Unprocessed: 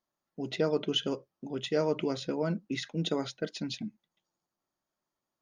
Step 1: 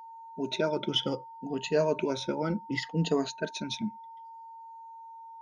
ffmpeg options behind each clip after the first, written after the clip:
ffmpeg -i in.wav -af "afftfilt=real='re*pow(10,15/40*sin(2*PI*(1.5*log(max(b,1)*sr/1024/100)/log(2)-(-0.66)*(pts-256)/sr)))':imag='im*pow(10,15/40*sin(2*PI*(1.5*log(max(b,1)*sr/1024/100)/log(2)-(-0.66)*(pts-256)/sr)))':win_size=1024:overlap=0.75,aeval=exprs='val(0)+0.00631*sin(2*PI*910*n/s)':channel_layout=same" out.wav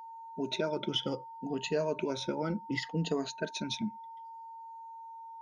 ffmpeg -i in.wav -af "acompressor=threshold=-31dB:ratio=2" out.wav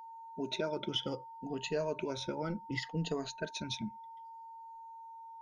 ffmpeg -i in.wav -af "asubboost=boost=6:cutoff=94,volume=-2.5dB" out.wav

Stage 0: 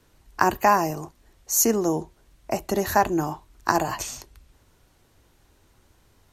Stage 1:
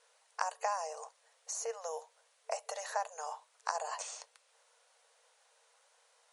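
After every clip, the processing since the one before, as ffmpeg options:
ffmpeg -i in.wav -filter_complex "[0:a]highshelf=frequency=8400:gain=6,acrossover=split=1300|4600[link_01][link_02][link_03];[link_01]acompressor=threshold=-29dB:ratio=4[link_04];[link_02]acompressor=threshold=-46dB:ratio=4[link_05];[link_03]acompressor=threshold=-40dB:ratio=4[link_06];[link_04][link_05][link_06]amix=inputs=3:normalize=0,afftfilt=real='re*between(b*sr/4096,450,11000)':imag='im*between(b*sr/4096,450,11000)':win_size=4096:overlap=0.75,volume=-4dB" out.wav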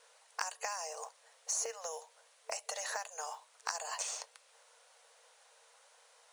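ffmpeg -i in.wav -filter_complex "[0:a]acrossover=split=1700|3500[link_01][link_02][link_03];[link_01]acompressor=threshold=-45dB:ratio=16[link_04];[link_04][link_02][link_03]amix=inputs=3:normalize=0,acrusher=bits=6:mode=log:mix=0:aa=0.000001,volume=5dB" out.wav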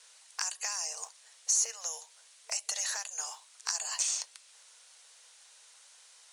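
ffmpeg -i in.wav -filter_complex "[0:a]asplit=2[link_01][link_02];[link_02]asoftclip=type=tanh:threshold=-35.5dB,volume=-5dB[link_03];[link_01][link_03]amix=inputs=2:normalize=0,bandpass=frequency=6700:width_type=q:width=0.59:csg=0,volume=6dB" out.wav

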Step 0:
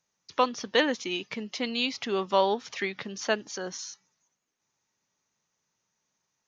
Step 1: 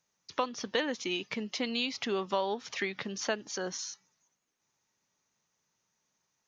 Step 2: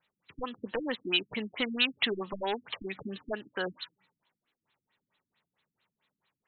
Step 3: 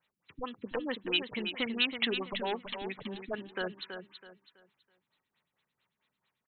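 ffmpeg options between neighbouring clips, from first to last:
ffmpeg -i in.wav -af "acompressor=threshold=-29dB:ratio=3" out.wav
ffmpeg -i in.wav -af "aeval=exprs='0.0531*(abs(mod(val(0)/0.0531+3,4)-2)-1)':channel_layout=same,crystalizer=i=8.5:c=0,afftfilt=real='re*lt(b*sr/1024,310*pow(4300/310,0.5+0.5*sin(2*PI*4.5*pts/sr)))':imag='im*lt(b*sr/1024,310*pow(4300/310,0.5+0.5*sin(2*PI*4.5*pts/sr)))':win_size=1024:overlap=0.75" out.wav
ffmpeg -i in.wav -af "aecho=1:1:327|654|981|1308:0.398|0.119|0.0358|0.0107,volume=-2dB" out.wav

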